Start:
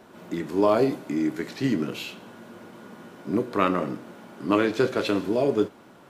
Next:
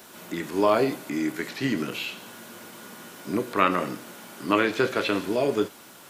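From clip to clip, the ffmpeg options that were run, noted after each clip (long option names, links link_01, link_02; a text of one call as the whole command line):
ffmpeg -i in.wav -filter_complex "[0:a]crystalizer=i=9.5:c=0,acrossover=split=2800[link_01][link_02];[link_02]acompressor=threshold=-41dB:ratio=4:attack=1:release=60[link_03];[link_01][link_03]amix=inputs=2:normalize=0,volume=-3dB" out.wav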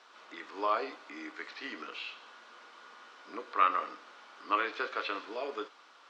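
ffmpeg -i in.wav -af "highpass=frequency=370:width=0.5412,highpass=frequency=370:width=1.3066,equalizer=frequency=370:width_type=q:width=4:gain=-8,equalizer=frequency=600:width_type=q:width=4:gain=-5,equalizer=frequency=1200:width_type=q:width=4:gain=8,lowpass=frequency=5100:width=0.5412,lowpass=frequency=5100:width=1.3066,volume=-9dB" out.wav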